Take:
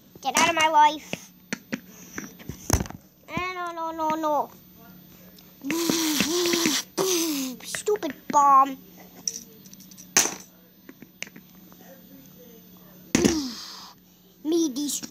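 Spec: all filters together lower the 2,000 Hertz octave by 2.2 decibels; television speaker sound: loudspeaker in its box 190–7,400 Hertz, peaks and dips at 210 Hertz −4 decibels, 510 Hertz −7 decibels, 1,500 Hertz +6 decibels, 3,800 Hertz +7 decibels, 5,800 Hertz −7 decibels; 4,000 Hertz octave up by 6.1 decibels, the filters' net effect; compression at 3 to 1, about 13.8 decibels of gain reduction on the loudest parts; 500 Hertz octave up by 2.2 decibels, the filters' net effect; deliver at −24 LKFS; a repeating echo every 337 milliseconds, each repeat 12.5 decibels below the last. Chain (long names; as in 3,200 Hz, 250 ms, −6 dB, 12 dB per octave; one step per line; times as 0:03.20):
parametric band 500 Hz +6.5 dB
parametric band 2,000 Hz −8 dB
parametric band 4,000 Hz +6.5 dB
downward compressor 3 to 1, threshold −33 dBFS
loudspeaker in its box 190–7,400 Hz, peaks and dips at 210 Hz −4 dB, 510 Hz −7 dB, 1,500 Hz +6 dB, 3,800 Hz +7 dB, 5,800 Hz −7 dB
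repeating echo 337 ms, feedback 24%, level −12.5 dB
level +10.5 dB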